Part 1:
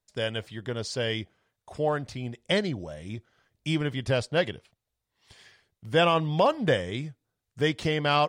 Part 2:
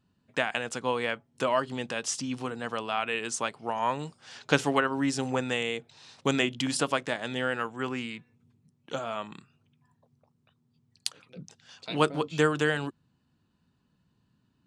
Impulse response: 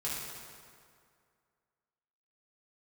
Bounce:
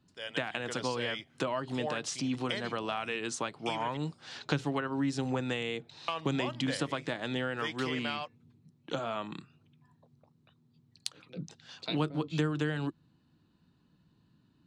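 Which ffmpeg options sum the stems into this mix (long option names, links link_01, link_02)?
-filter_complex "[0:a]dynaudnorm=framelen=120:gausssize=7:maxgain=12dB,highpass=frequency=1500:poles=1,volume=-8dB,asplit=3[link_01][link_02][link_03];[link_01]atrim=end=3.97,asetpts=PTS-STARTPTS,afade=type=out:start_time=3.966:duration=0.004:curve=hsin[link_04];[link_02]atrim=start=3.97:end=6.08,asetpts=PTS-STARTPTS,volume=0[link_05];[link_03]atrim=start=6.08,asetpts=PTS-STARTPTS,afade=type=in:duration=0.004:curve=hsin[link_06];[link_04][link_05][link_06]concat=n=3:v=0:a=1[link_07];[1:a]equalizer=frequency=160:width_type=o:width=0.33:gain=4,equalizer=frequency=315:width_type=o:width=0.33:gain=7,equalizer=frequency=4000:width_type=o:width=0.33:gain=6,volume=1.5dB[link_08];[link_07][link_08]amix=inputs=2:normalize=0,acrossover=split=140[link_09][link_10];[link_10]acompressor=threshold=-30dB:ratio=6[link_11];[link_09][link_11]amix=inputs=2:normalize=0,highshelf=frequency=7600:gain=-9.5"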